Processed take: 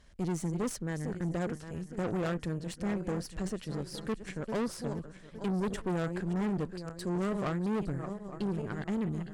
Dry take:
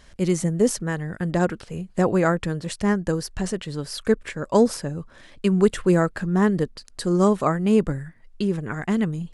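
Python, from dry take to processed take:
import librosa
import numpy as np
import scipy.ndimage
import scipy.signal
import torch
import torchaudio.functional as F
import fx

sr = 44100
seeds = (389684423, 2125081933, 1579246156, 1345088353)

y = fx.reverse_delay_fb(x, sr, ms=431, feedback_pct=58, wet_db=-12)
y = fx.low_shelf(y, sr, hz=410.0, db=5.0)
y = fx.tube_stage(y, sr, drive_db=20.0, bias=0.65)
y = F.gain(torch.from_numpy(y), -8.5).numpy()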